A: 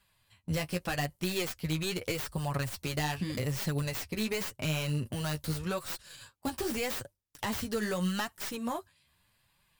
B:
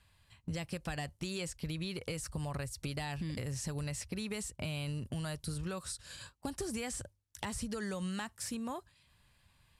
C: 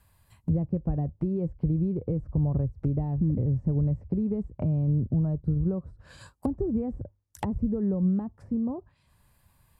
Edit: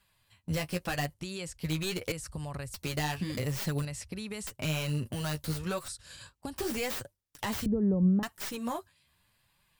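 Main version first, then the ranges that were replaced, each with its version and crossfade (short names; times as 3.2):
A
1.14–1.61 from B
2.12–2.74 from B
3.85–4.47 from B
5.88–6.56 from B
7.66–8.23 from C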